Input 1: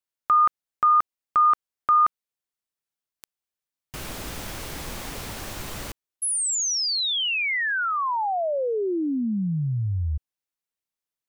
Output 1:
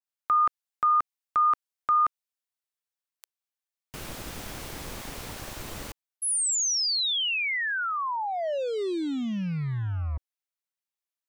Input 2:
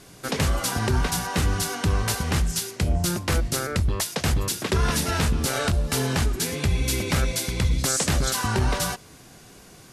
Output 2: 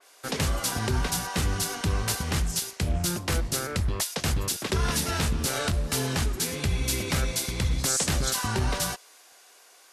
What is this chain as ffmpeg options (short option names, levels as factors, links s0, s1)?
-filter_complex "[0:a]acrossover=split=490[s0][s1];[s0]acrusher=bits=5:mix=0:aa=0.5[s2];[s2][s1]amix=inputs=2:normalize=0,adynamicequalizer=threshold=0.0141:dfrequency=2700:dqfactor=0.7:tfrequency=2700:tqfactor=0.7:attack=5:release=100:ratio=0.375:range=1.5:mode=boostabove:tftype=highshelf,volume=0.631"